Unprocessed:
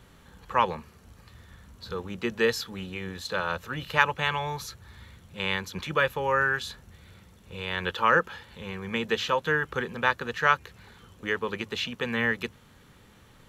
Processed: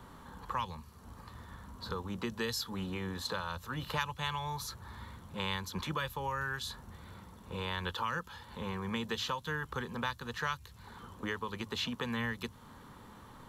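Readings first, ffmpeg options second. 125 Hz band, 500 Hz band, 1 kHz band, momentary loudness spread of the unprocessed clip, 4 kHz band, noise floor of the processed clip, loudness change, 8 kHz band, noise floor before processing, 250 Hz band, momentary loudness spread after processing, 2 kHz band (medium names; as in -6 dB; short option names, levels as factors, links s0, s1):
-3.0 dB, -12.0 dB, -9.5 dB, 14 LU, -5.0 dB, -55 dBFS, -9.5 dB, -2.5 dB, -56 dBFS, -4.5 dB, 16 LU, -12.0 dB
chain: -filter_complex "[0:a]equalizer=f=250:t=o:w=0.67:g=5,equalizer=f=1000:t=o:w=0.67:g=11,equalizer=f=2500:t=o:w=0.67:g=-6,equalizer=f=6300:t=o:w=0.67:g=-3,acrossover=split=130|3000[s0][s1][s2];[s1]acompressor=threshold=0.0141:ratio=6[s3];[s0][s3][s2]amix=inputs=3:normalize=0"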